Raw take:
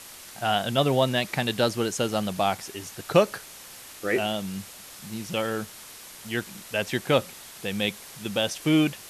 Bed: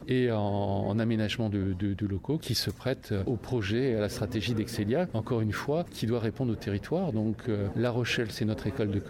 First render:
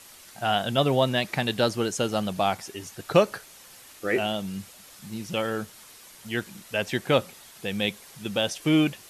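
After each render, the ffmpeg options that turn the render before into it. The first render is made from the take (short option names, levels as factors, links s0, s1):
-af "afftdn=nr=6:nf=-45"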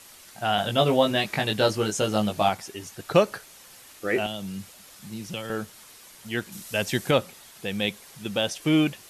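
-filter_complex "[0:a]asettb=1/sr,asplit=3[s0][s1][s2];[s0]atrim=end=0.564[s3];[s1]atrim=start=0.56:end=2.49,asetpts=PTS-STARTPTS,afade=t=in:d=0.004:c=qsin,afade=t=out:st=1.926:d=0.004:c=qsin,asplit=2[s4][s5];[s5]adelay=19,volume=0.708[s6];[s4][s6]amix=inputs=2:normalize=0,atrim=end_sample=85113[s7];[s2]atrim=start=2.486[s8];[s3][s7]acrossfade=d=0.004:c1=hsin:c2=qsin[s9];[s9][s8]acrossfade=d=0.004:c1=qsin:c2=hsin,asettb=1/sr,asplit=3[s10][s11][s12];[s10]atrim=end=4.264[s13];[s11]atrim=start=4.26:end=5.5,asetpts=PTS-STARTPTS,afade=t=in:d=0.004:c=qsin,afade=t=out:st=1.236:d=0.004:c=qsin,acrossover=split=140|3000[s14][s15][s16];[s15]acompressor=threshold=0.0251:ratio=6:attack=3.2:release=140:knee=2.83:detection=peak[s17];[s14][s17][s16]amix=inputs=3:normalize=0[s18];[s12]atrim=start=5.496[s19];[s13][s18]acrossfade=d=0.004:c1=hsin:c2=qsin[s20];[s20][s19]acrossfade=d=0.004:c1=qsin:c2=hsin,asettb=1/sr,asplit=3[s21][s22][s23];[s21]atrim=end=6.524[s24];[s22]atrim=start=6.52:end=7.11,asetpts=PTS-STARTPTS,afade=t=in:d=0.004:c=qsin,afade=t=out:st=0.586:d=0.004:c=qsin,bass=f=250:g=4,treble=f=4000:g=8[s25];[s23]atrim=start=7.106[s26];[s24][s25]acrossfade=d=0.004:c1=hsin:c2=qsin[s27];[s27][s26]acrossfade=d=0.004:c1=qsin:c2=hsin"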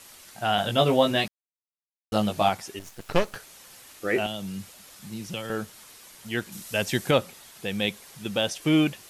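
-filter_complex "[0:a]asettb=1/sr,asplit=3[s0][s1][s2];[s0]atrim=end=2.794[s3];[s1]atrim=start=2.79:end=3.36,asetpts=PTS-STARTPTS,afade=t=in:d=0.004:c=qsin,afade=t=out:st=0.566:d=0.004:c=qsin,aeval=exprs='max(val(0),0)':c=same[s4];[s2]atrim=start=3.356[s5];[s3][s4]acrossfade=d=0.004:c1=hsin:c2=qsin[s6];[s6][s5]acrossfade=d=0.004:c1=qsin:c2=hsin,asplit=3[s7][s8][s9];[s7]atrim=end=1.28,asetpts=PTS-STARTPTS,afade=t=out:st=1.276:d=0.004:c=hsin[s10];[s8]atrim=start=1.28:end=2.12,asetpts=PTS-STARTPTS,volume=0[s11];[s9]atrim=start=2.12,asetpts=PTS-STARTPTS,afade=t=in:d=0.004:c=hsin[s12];[s10][s11][s12]concat=n=3:v=0:a=1"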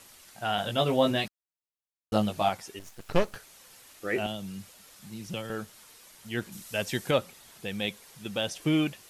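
-af "flanger=delay=0:depth=2.2:regen=83:speed=0.93:shape=sinusoidal"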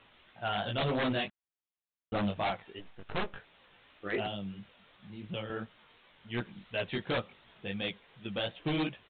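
-af "flanger=delay=16:depth=5:speed=2.8,aresample=8000,aeval=exprs='0.0562*(abs(mod(val(0)/0.0562+3,4)-2)-1)':c=same,aresample=44100"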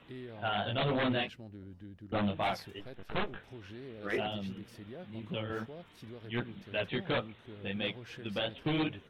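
-filter_complex "[1:a]volume=0.112[s0];[0:a][s0]amix=inputs=2:normalize=0"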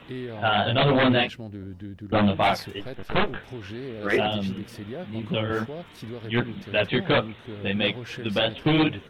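-af "volume=3.55"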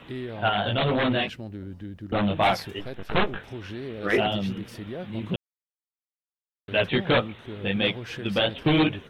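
-filter_complex "[0:a]asettb=1/sr,asplit=3[s0][s1][s2];[s0]atrim=end=0.494[s3];[s1]atrim=start=0.49:end=2.31,asetpts=PTS-STARTPTS,afade=t=in:d=0.004:c=qsin,afade=t=out:st=1.816:d=0.004:c=qsin,acompressor=threshold=0.0708:ratio=2:attack=3.2:release=140:knee=1:detection=peak[s4];[s2]atrim=start=2.306[s5];[s3][s4]acrossfade=d=0.004:c1=hsin:c2=qsin[s6];[s6][s5]acrossfade=d=0.004:c1=qsin:c2=hsin,asplit=3[s7][s8][s9];[s7]atrim=end=5.36,asetpts=PTS-STARTPTS,afade=t=out:st=5.356:d=0.004:c=hsin[s10];[s8]atrim=start=5.36:end=6.68,asetpts=PTS-STARTPTS,volume=0[s11];[s9]atrim=start=6.68,asetpts=PTS-STARTPTS,afade=t=in:d=0.004:c=hsin[s12];[s10][s11][s12]concat=n=3:v=0:a=1"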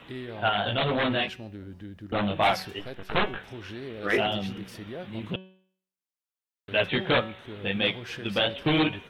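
-af "lowshelf=f=470:g=-4.5,bandreject=f=187.6:t=h:w=4,bandreject=f=375.2:t=h:w=4,bandreject=f=562.8:t=h:w=4,bandreject=f=750.4:t=h:w=4,bandreject=f=938:t=h:w=4,bandreject=f=1125.6:t=h:w=4,bandreject=f=1313.2:t=h:w=4,bandreject=f=1500.8:t=h:w=4,bandreject=f=1688.4:t=h:w=4,bandreject=f=1876:t=h:w=4,bandreject=f=2063.6:t=h:w=4,bandreject=f=2251.2:t=h:w=4,bandreject=f=2438.8:t=h:w=4,bandreject=f=2626.4:t=h:w=4,bandreject=f=2814:t=h:w=4,bandreject=f=3001.6:t=h:w=4,bandreject=f=3189.2:t=h:w=4,bandreject=f=3376.8:t=h:w=4,bandreject=f=3564.4:t=h:w=4,bandreject=f=3752:t=h:w=4,bandreject=f=3939.6:t=h:w=4,bandreject=f=4127.2:t=h:w=4,bandreject=f=4314.8:t=h:w=4,bandreject=f=4502.4:t=h:w=4,bandreject=f=4690:t=h:w=4,bandreject=f=4877.6:t=h:w=4,bandreject=f=5065.2:t=h:w=4,bandreject=f=5252.8:t=h:w=4,bandreject=f=5440.4:t=h:w=4,bandreject=f=5628:t=h:w=4,bandreject=f=5815.6:t=h:w=4,bandreject=f=6003.2:t=h:w=4,bandreject=f=6190.8:t=h:w=4,bandreject=f=6378.4:t=h:w=4,bandreject=f=6566:t=h:w=4"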